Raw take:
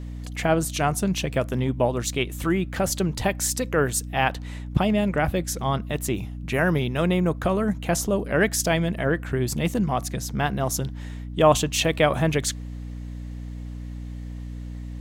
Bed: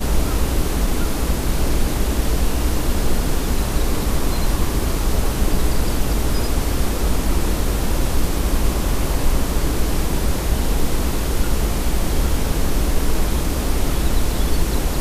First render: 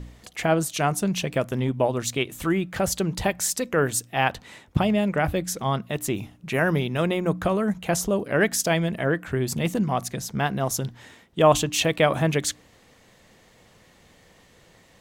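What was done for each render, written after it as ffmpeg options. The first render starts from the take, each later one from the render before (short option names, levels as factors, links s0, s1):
-af "bandreject=f=60:t=h:w=4,bandreject=f=120:t=h:w=4,bandreject=f=180:t=h:w=4,bandreject=f=240:t=h:w=4,bandreject=f=300:t=h:w=4"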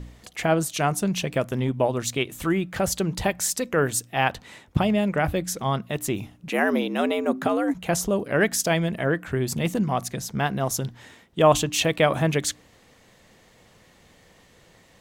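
-filter_complex "[0:a]asettb=1/sr,asplit=3[s0][s1][s2];[s0]atrim=end=6.484[s3];[s1]atrim=start=6.48:end=7.74,asetpts=PTS-STARTPTS,afade=t=in:d=0.004:c=qsin,afade=t=out:st=1.256:d=0.004:c=qsin,afreqshift=80[s4];[s2]atrim=start=7.736[s5];[s3][s4]acrossfade=d=0.004:c1=hsin:c2=qsin[s6];[s6][s5]acrossfade=d=0.004:c1=qsin:c2=hsin"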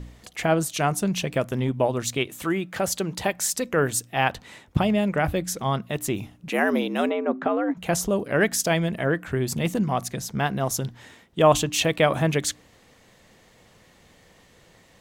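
-filter_complex "[0:a]asettb=1/sr,asplit=3[s0][s1][s2];[s0]atrim=end=2.274[s3];[s1]atrim=start=2.27:end=3.54,asetpts=PTS-STARTPTS,afade=t=in:d=0.004:c=qsin,afade=t=out:st=1.266:d=0.004:c=qsin,highpass=f=220:p=1[s4];[s2]atrim=start=3.536[s5];[s3][s4]acrossfade=d=0.004:c1=hsin:c2=qsin[s6];[s6][s5]acrossfade=d=0.004:c1=qsin:c2=hsin,asplit=3[s7][s8][s9];[s7]afade=t=out:st=7.09:d=0.02[s10];[s8]highpass=220,lowpass=2200,afade=t=in:st=7.09:d=0.02,afade=t=out:st=7.76:d=0.02[s11];[s9]afade=t=in:st=7.76:d=0.02[s12];[s10][s11][s12]amix=inputs=3:normalize=0"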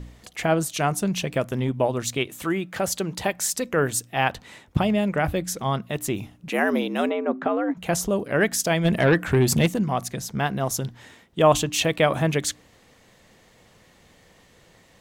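-filter_complex "[0:a]asplit=3[s0][s1][s2];[s0]afade=t=out:st=8.84:d=0.02[s3];[s1]aeval=exprs='0.251*sin(PI/2*1.58*val(0)/0.251)':c=same,afade=t=in:st=8.84:d=0.02,afade=t=out:st=9.65:d=0.02[s4];[s2]afade=t=in:st=9.65:d=0.02[s5];[s3][s4][s5]amix=inputs=3:normalize=0"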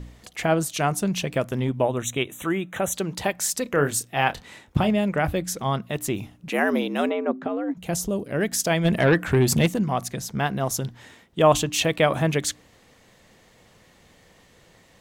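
-filter_complex "[0:a]asettb=1/sr,asplit=3[s0][s1][s2];[s0]atrim=end=1.834[s3];[s1]atrim=start=1.83:end=2.94,asetpts=PTS-STARTPTS,afade=t=in:d=0.004:c=qsin,afade=t=out:st=1.106:d=0.004:c=qsin,asuperstop=centerf=4800:order=12:qfactor=2.7[s4];[s2]atrim=start=2.936[s5];[s3][s4]acrossfade=d=0.004:c1=hsin:c2=qsin[s6];[s6][s5]acrossfade=d=0.004:c1=qsin:c2=hsin,asettb=1/sr,asplit=3[s7][s8][s9];[s7]atrim=end=3.634[s10];[s8]atrim=start=3.63:end=4.9,asetpts=PTS-STARTPTS,afade=t=in:d=0.004:c=qsin,afade=t=out:st=1.266:d=0.004:c=qsin,asplit=2[s11][s12];[s12]adelay=28,volume=0.335[s13];[s11][s13]amix=inputs=2:normalize=0,atrim=end_sample=56007[s14];[s9]atrim=start=4.896[s15];[s10][s14]acrossfade=d=0.004:c1=hsin:c2=qsin[s16];[s16][s15]acrossfade=d=0.004:c1=qsin:c2=hsin,asettb=1/sr,asplit=3[s17][s18][s19];[s17]atrim=end=7.314[s20];[s18]atrim=start=7.31:end=8.53,asetpts=PTS-STARTPTS,afade=t=in:d=0.004:c=qsin,afade=t=out:st=1.216:d=0.004:c=qsin,equalizer=f=1300:w=0.46:g=-8[s21];[s19]atrim=start=8.526[s22];[s20][s21]acrossfade=d=0.004:c1=hsin:c2=qsin[s23];[s23][s22]acrossfade=d=0.004:c1=qsin:c2=hsin"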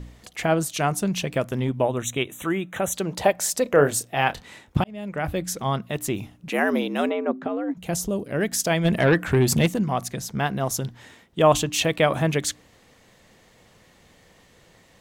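-filter_complex "[0:a]asettb=1/sr,asplit=3[s0][s1][s2];[s0]atrim=end=3.054[s3];[s1]atrim=start=3.05:end=4.15,asetpts=PTS-STARTPTS,afade=t=in:d=0.004:c=qsin,afade=t=out:st=1.096:d=0.004:c=qsin,equalizer=f=610:w=1.3:g=8.5[s4];[s2]atrim=start=4.146[s5];[s3][s4]acrossfade=d=0.004:c1=hsin:c2=qsin[s6];[s6][s5]acrossfade=d=0.004:c1=qsin:c2=hsin,asplit=2[s7][s8];[s7]atrim=end=4.84,asetpts=PTS-STARTPTS,afade=t=out:st=4.836:d=0.004:c=hsin[s9];[s8]atrim=start=4.84,asetpts=PTS-STARTPTS,afade=t=in:d=0.61[s10];[s9][s10]concat=n=2:v=0:a=1"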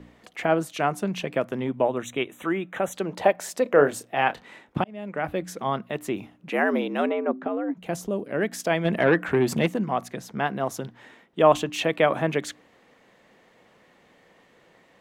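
-filter_complex "[0:a]acrossover=split=180 3000:gain=0.158 1 0.251[s0][s1][s2];[s0][s1][s2]amix=inputs=3:normalize=0"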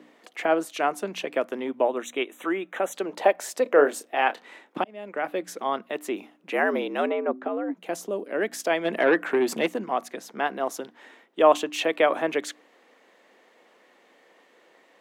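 -af "highpass=f=270:w=0.5412,highpass=f=270:w=1.3066"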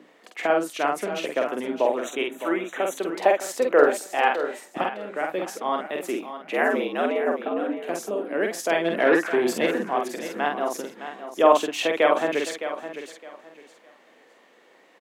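-filter_complex "[0:a]asplit=2[s0][s1];[s1]adelay=48,volume=0.668[s2];[s0][s2]amix=inputs=2:normalize=0,asplit=2[s3][s4];[s4]aecho=0:1:612|1224|1836:0.282|0.0648|0.0149[s5];[s3][s5]amix=inputs=2:normalize=0"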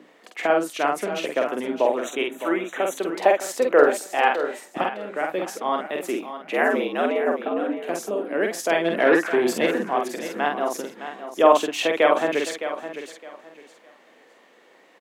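-af "volume=1.19,alimiter=limit=0.708:level=0:latency=1"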